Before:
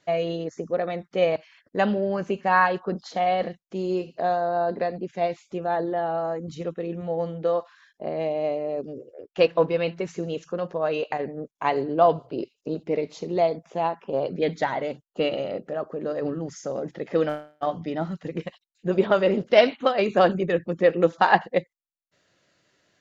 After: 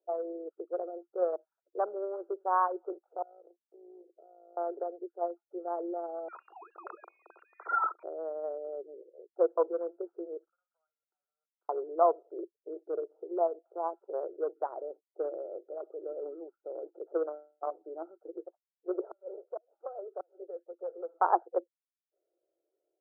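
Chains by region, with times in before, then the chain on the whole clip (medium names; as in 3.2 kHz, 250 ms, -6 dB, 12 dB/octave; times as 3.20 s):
3.22–4.57 s: valve stage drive 21 dB, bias 0.55 + compression 12:1, threshold -37 dBFS + AM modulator 56 Hz, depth 50%
6.28–8.03 s: formants replaced by sine waves + frequency inversion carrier 3 kHz + level flattener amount 100%
10.48–11.69 s: companding laws mixed up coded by A + elliptic high-pass 1.4 kHz, stop band 80 dB + compression 12:1, threshold -51 dBFS
18.99–21.14 s: high-pass 510 Hz 24 dB/octave + compression 2:1, threshold -28 dBFS + inverted gate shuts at -17 dBFS, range -35 dB
whole clip: local Wiener filter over 41 samples; level-controlled noise filter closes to 810 Hz, open at -19.5 dBFS; Chebyshev band-pass 340–1400 Hz, order 5; trim -5.5 dB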